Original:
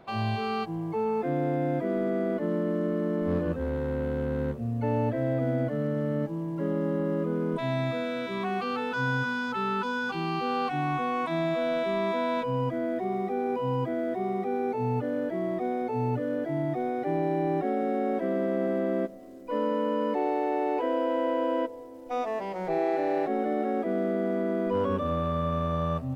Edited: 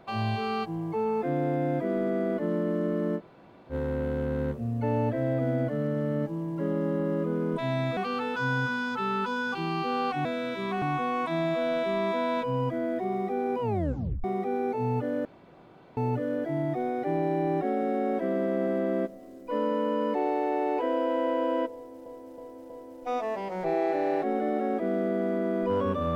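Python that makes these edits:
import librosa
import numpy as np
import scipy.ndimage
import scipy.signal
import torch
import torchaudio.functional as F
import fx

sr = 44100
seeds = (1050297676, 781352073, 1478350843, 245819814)

y = fx.edit(x, sr, fx.room_tone_fill(start_s=3.18, length_s=0.54, crossfade_s=0.06),
    fx.move(start_s=7.97, length_s=0.57, to_s=10.82),
    fx.tape_stop(start_s=13.61, length_s=0.63),
    fx.room_tone_fill(start_s=15.25, length_s=0.72),
    fx.repeat(start_s=21.74, length_s=0.32, count=4), tone=tone)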